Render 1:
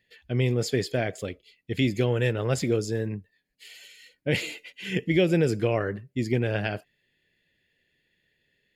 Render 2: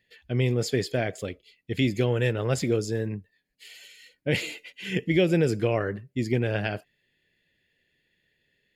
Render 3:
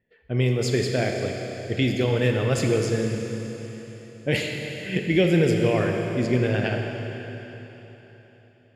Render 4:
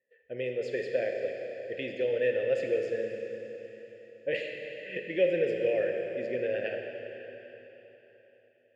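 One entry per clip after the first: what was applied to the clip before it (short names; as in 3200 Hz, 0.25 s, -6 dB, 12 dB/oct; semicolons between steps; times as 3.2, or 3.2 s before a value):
nothing audible
low-pass opened by the level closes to 1100 Hz, open at -21 dBFS; Schroeder reverb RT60 3.8 s, combs from 28 ms, DRR 2 dB; gain +1.5 dB
vowel filter e; gain +2.5 dB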